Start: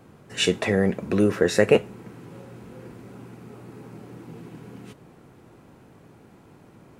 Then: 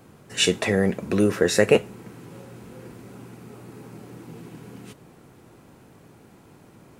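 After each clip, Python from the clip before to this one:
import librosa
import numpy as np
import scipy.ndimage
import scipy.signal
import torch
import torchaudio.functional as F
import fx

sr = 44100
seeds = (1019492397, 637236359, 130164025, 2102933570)

y = fx.high_shelf(x, sr, hz=4200.0, db=7.0)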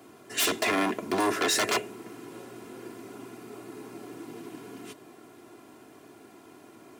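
y = 10.0 ** (-20.5 / 20.0) * (np.abs((x / 10.0 ** (-20.5 / 20.0) + 3.0) % 4.0 - 2.0) - 1.0)
y = scipy.signal.sosfilt(scipy.signal.butter(2, 200.0, 'highpass', fs=sr, output='sos'), y)
y = y + 0.62 * np.pad(y, (int(2.9 * sr / 1000.0), 0))[:len(y)]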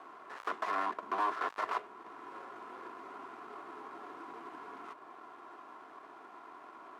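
y = fx.dead_time(x, sr, dead_ms=0.18)
y = fx.bandpass_q(y, sr, hz=1100.0, q=3.0)
y = fx.band_squash(y, sr, depth_pct=40)
y = F.gain(torch.from_numpy(y), 4.0).numpy()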